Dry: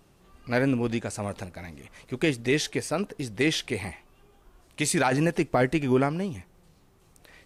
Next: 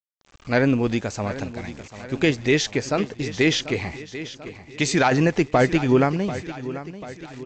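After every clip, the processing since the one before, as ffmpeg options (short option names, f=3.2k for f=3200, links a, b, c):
-af "aresample=16000,aeval=exprs='val(0)*gte(abs(val(0)),0.00376)':c=same,aresample=44100,aecho=1:1:740|1480|2220|2960|3700:0.2|0.106|0.056|0.0297|0.0157,volume=5dB"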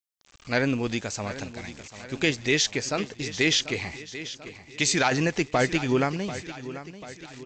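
-af "highshelf=f=2.1k:g=10.5,volume=-6.5dB"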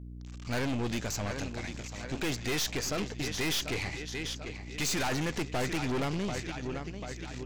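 -af "aeval=exprs='val(0)+0.00794*(sin(2*PI*60*n/s)+sin(2*PI*2*60*n/s)/2+sin(2*PI*3*60*n/s)/3+sin(2*PI*4*60*n/s)/4+sin(2*PI*5*60*n/s)/5)':c=same,acontrast=35,aeval=exprs='(tanh(20*val(0)+0.55)-tanh(0.55))/20':c=same,volume=-3dB"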